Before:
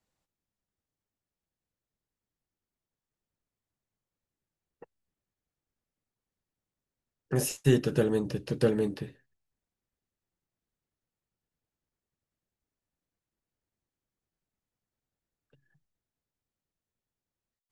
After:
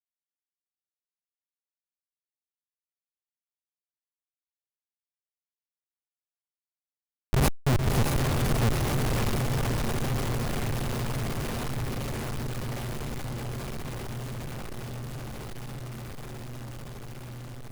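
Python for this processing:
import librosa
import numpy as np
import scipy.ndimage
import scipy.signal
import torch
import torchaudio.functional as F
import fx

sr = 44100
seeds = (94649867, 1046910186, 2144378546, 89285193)

y = fx.bass_treble(x, sr, bass_db=10, treble_db=11)
y = fx.schmitt(y, sr, flips_db=-15.5)
y = fx.echo_diffused(y, sr, ms=578, feedback_pct=68, wet_db=-6.5)
y = fx.power_curve(y, sr, exponent=0.35)
y = y * 10.0 ** (5.0 / 20.0)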